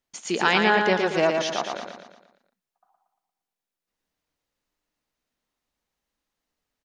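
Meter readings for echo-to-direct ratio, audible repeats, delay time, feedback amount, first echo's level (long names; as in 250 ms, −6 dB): −3.5 dB, 5, 116 ms, 48%, −4.5 dB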